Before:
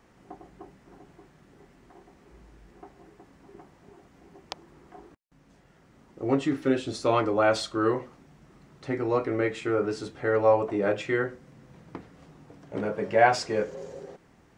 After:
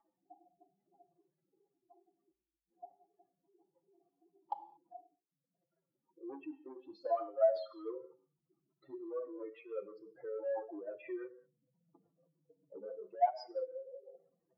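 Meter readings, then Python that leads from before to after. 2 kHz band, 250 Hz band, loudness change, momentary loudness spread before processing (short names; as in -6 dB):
-28.5 dB, -20.0 dB, -13.0 dB, 21 LU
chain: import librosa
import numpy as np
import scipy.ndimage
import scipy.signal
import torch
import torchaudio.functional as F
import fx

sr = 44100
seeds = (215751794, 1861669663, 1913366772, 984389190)

p1 = fx.spec_expand(x, sr, power=3.7)
p2 = fx.dynamic_eq(p1, sr, hz=810.0, q=1.2, threshold_db=-36.0, ratio=4.0, max_db=-3)
p3 = 10.0 ** (-22.0 / 20.0) * np.tanh(p2 / 10.0 ** (-22.0 / 20.0))
p4 = p2 + (p3 * 10.0 ** (-8.0 / 20.0))
p5 = fx.rev_gated(p4, sr, seeds[0], gate_ms=250, shape='falling', drr_db=11.5)
p6 = fx.rider(p5, sr, range_db=10, speed_s=0.5)
p7 = fx.ladder_bandpass(p6, sr, hz=1000.0, resonance_pct=35)
p8 = fx.wow_flutter(p7, sr, seeds[1], rate_hz=2.1, depth_cents=27.0)
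p9 = p8 + 0.68 * np.pad(p8, (int(6.0 * sr / 1000.0), 0))[:len(p8)]
p10 = fx.rotary_switch(p9, sr, hz=0.6, then_hz=6.0, switch_at_s=5.75)
p11 = fx.comb_cascade(p10, sr, direction='falling', hz=0.45)
y = p11 * 10.0 ** (9.5 / 20.0)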